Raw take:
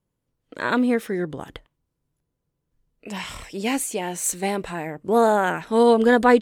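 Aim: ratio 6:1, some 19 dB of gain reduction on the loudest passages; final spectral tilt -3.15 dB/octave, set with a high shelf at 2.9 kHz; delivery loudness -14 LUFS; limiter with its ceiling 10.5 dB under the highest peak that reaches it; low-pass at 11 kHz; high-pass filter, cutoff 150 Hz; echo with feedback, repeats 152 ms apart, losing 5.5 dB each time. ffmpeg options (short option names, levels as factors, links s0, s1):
-af "highpass=150,lowpass=11000,highshelf=f=2900:g=6.5,acompressor=threshold=0.0282:ratio=6,alimiter=level_in=1.58:limit=0.0631:level=0:latency=1,volume=0.631,aecho=1:1:152|304|456|608|760|912|1064:0.531|0.281|0.149|0.079|0.0419|0.0222|0.0118,volume=14.1"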